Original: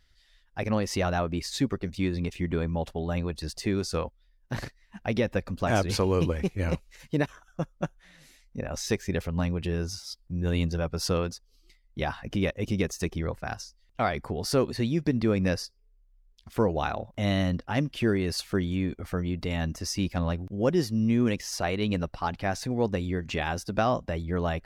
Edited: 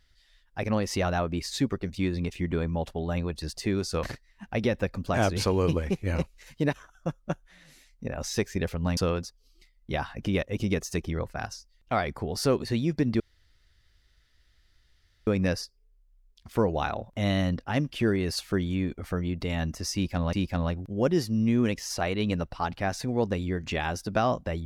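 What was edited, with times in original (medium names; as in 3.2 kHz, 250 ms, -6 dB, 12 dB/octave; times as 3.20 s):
4.03–4.56 s: delete
9.50–11.05 s: delete
15.28 s: insert room tone 2.07 s
19.95–20.34 s: loop, 2 plays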